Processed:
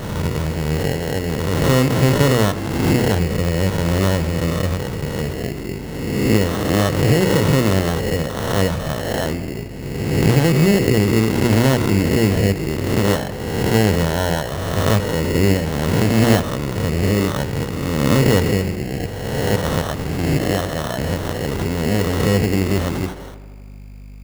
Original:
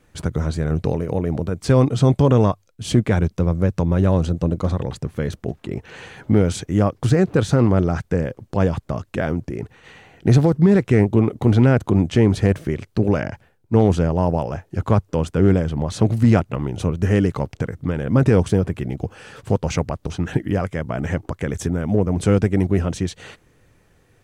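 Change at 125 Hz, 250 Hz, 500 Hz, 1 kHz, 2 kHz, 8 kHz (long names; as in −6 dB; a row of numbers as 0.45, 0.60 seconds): +0.5, +0.5, +2.0, +3.5, +7.5, +8.5 decibels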